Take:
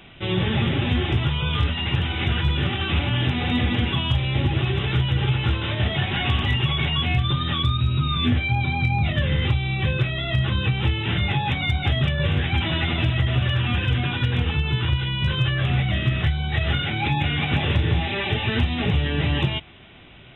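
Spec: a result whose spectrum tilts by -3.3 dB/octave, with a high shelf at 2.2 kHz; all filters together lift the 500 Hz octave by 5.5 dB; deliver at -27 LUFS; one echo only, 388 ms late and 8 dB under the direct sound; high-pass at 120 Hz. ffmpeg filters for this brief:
-af "highpass=120,equalizer=f=500:t=o:g=7,highshelf=f=2200:g=5,aecho=1:1:388:0.398,volume=0.531"

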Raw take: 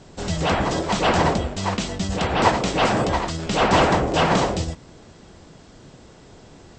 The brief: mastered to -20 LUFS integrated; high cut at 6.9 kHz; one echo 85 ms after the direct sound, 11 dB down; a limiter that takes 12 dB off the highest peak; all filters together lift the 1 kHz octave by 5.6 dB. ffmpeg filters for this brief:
-af "lowpass=6900,equalizer=f=1000:t=o:g=7,alimiter=limit=0.237:level=0:latency=1,aecho=1:1:85:0.282,volume=1.26"

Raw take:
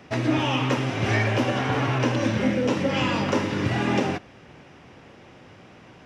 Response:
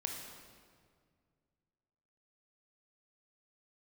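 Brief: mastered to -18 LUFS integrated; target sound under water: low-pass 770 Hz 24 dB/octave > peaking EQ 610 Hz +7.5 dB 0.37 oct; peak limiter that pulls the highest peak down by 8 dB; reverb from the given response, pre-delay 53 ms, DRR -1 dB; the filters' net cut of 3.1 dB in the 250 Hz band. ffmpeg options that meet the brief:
-filter_complex "[0:a]equalizer=f=250:t=o:g=-4,alimiter=limit=0.106:level=0:latency=1,asplit=2[s0][s1];[1:a]atrim=start_sample=2205,adelay=53[s2];[s1][s2]afir=irnorm=-1:irlink=0,volume=1.06[s3];[s0][s3]amix=inputs=2:normalize=0,lowpass=f=770:w=0.5412,lowpass=f=770:w=1.3066,equalizer=f=610:t=o:w=0.37:g=7.5,volume=2.37"

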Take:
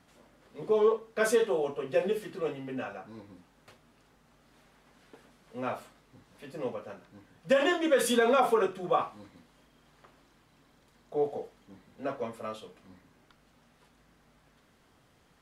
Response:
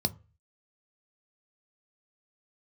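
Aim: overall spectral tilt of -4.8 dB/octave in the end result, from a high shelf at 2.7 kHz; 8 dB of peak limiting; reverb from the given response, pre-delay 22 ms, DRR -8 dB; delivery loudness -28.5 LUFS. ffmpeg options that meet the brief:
-filter_complex "[0:a]highshelf=f=2700:g=-5.5,alimiter=limit=0.0944:level=0:latency=1,asplit=2[s0][s1];[1:a]atrim=start_sample=2205,adelay=22[s2];[s1][s2]afir=irnorm=-1:irlink=0,volume=1.33[s3];[s0][s3]amix=inputs=2:normalize=0,volume=0.398"

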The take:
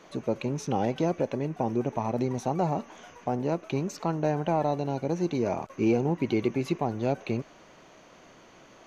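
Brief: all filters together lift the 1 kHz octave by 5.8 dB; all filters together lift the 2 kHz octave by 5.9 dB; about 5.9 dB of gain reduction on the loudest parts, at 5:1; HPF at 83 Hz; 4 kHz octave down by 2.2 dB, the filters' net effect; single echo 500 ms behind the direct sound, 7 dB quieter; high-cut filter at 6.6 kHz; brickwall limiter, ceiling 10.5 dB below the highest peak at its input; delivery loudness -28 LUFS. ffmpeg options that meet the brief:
-af "highpass=83,lowpass=6600,equalizer=f=1000:t=o:g=7,equalizer=f=2000:t=o:g=7.5,equalizer=f=4000:t=o:g=-6.5,acompressor=threshold=0.0562:ratio=5,alimiter=limit=0.0668:level=0:latency=1,aecho=1:1:500:0.447,volume=2.24"

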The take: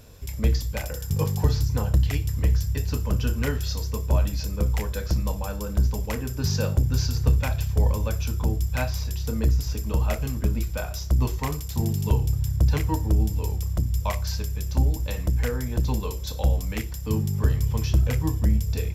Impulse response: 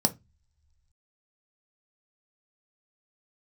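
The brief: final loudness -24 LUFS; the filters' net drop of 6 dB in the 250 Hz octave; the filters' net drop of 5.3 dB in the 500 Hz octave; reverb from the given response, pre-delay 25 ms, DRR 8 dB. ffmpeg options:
-filter_complex "[0:a]equalizer=f=250:t=o:g=-8.5,equalizer=f=500:t=o:g=-4,asplit=2[s0][s1];[1:a]atrim=start_sample=2205,adelay=25[s2];[s1][s2]afir=irnorm=-1:irlink=0,volume=0.141[s3];[s0][s3]amix=inputs=2:normalize=0,volume=1.12"

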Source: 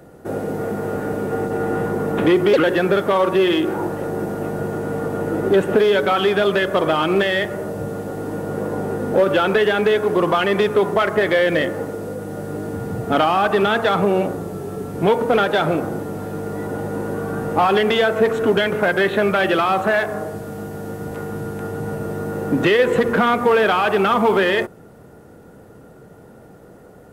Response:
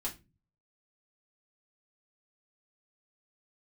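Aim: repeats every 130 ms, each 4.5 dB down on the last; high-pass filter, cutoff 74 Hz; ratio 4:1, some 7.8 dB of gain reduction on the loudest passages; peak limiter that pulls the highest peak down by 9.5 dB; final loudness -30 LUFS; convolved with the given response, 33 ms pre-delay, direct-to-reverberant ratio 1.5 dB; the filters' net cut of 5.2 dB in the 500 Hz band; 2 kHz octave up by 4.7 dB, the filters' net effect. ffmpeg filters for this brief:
-filter_complex "[0:a]highpass=74,equalizer=f=500:t=o:g=-7,equalizer=f=2000:t=o:g=6.5,acompressor=threshold=0.0794:ratio=4,alimiter=limit=0.106:level=0:latency=1,aecho=1:1:130|260|390|520|650|780|910|1040|1170:0.596|0.357|0.214|0.129|0.0772|0.0463|0.0278|0.0167|0.01,asplit=2[s0][s1];[1:a]atrim=start_sample=2205,adelay=33[s2];[s1][s2]afir=irnorm=-1:irlink=0,volume=0.708[s3];[s0][s3]amix=inputs=2:normalize=0,volume=0.501"

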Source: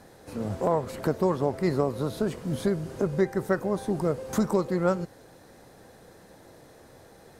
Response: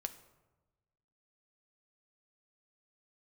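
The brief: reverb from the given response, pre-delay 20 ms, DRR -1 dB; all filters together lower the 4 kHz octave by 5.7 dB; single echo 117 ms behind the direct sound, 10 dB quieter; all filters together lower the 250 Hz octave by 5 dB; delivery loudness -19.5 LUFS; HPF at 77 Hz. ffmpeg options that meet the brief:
-filter_complex "[0:a]highpass=77,equalizer=f=250:t=o:g=-8,equalizer=f=4000:t=o:g=-7,aecho=1:1:117:0.316,asplit=2[s0][s1];[1:a]atrim=start_sample=2205,adelay=20[s2];[s1][s2]afir=irnorm=-1:irlink=0,volume=1.33[s3];[s0][s3]amix=inputs=2:normalize=0,volume=2.37"

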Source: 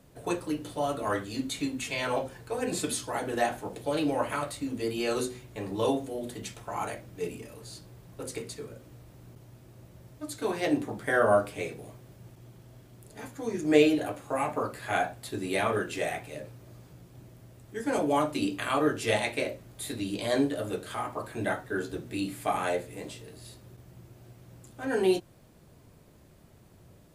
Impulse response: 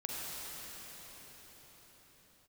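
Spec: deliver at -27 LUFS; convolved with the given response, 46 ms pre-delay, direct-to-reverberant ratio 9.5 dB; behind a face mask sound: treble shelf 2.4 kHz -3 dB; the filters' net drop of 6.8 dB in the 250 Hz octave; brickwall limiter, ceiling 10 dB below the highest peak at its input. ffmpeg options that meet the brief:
-filter_complex "[0:a]equalizer=f=250:t=o:g=-9,alimiter=limit=0.0944:level=0:latency=1,asplit=2[s0][s1];[1:a]atrim=start_sample=2205,adelay=46[s2];[s1][s2]afir=irnorm=-1:irlink=0,volume=0.224[s3];[s0][s3]amix=inputs=2:normalize=0,highshelf=f=2400:g=-3,volume=2.37"

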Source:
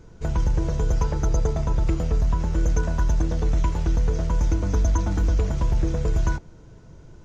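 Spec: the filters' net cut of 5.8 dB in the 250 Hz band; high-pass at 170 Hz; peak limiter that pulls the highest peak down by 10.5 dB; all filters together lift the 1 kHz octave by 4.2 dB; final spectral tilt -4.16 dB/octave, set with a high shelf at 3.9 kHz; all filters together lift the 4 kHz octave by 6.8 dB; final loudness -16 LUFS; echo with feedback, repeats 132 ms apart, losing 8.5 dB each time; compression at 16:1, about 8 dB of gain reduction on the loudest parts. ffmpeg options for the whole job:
-af "highpass=170,equalizer=f=250:t=o:g=-7.5,equalizer=f=1000:t=o:g=4.5,highshelf=f=3900:g=4,equalizer=f=4000:t=o:g=6,acompressor=threshold=0.0224:ratio=16,alimiter=level_in=2.37:limit=0.0631:level=0:latency=1,volume=0.422,aecho=1:1:132|264|396|528:0.376|0.143|0.0543|0.0206,volume=17.8"

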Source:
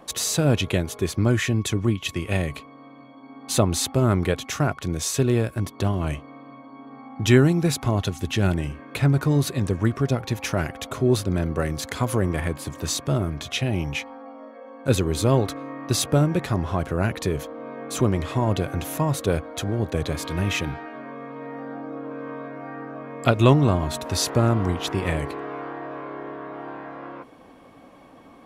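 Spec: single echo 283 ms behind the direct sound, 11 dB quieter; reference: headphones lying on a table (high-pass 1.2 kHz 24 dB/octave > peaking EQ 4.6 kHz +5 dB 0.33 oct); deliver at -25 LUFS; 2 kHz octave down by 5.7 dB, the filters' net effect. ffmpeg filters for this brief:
-af "highpass=f=1200:w=0.5412,highpass=f=1200:w=1.3066,equalizer=f=2000:t=o:g=-7.5,equalizer=f=4600:t=o:w=0.33:g=5,aecho=1:1:283:0.282,volume=2.24"

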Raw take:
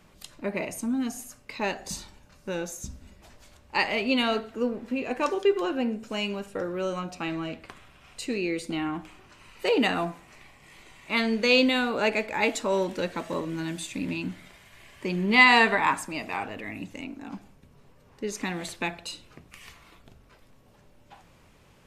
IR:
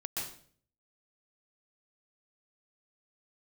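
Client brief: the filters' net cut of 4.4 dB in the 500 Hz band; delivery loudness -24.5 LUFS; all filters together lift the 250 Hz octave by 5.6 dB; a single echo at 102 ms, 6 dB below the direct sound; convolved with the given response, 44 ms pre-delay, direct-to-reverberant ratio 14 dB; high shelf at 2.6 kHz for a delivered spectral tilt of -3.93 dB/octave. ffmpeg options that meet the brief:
-filter_complex "[0:a]equalizer=f=250:t=o:g=8.5,equalizer=f=500:t=o:g=-8.5,highshelf=f=2600:g=-6,aecho=1:1:102:0.501,asplit=2[s0][s1];[1:a]atrim=start_sample=2205,adelay=44[s2];[s1][s2]afir=irnorm=-1:irlink=0,volume=0.158[s3];[s0][s3]amix=inputs=2:normalize=0,volume=1.12"

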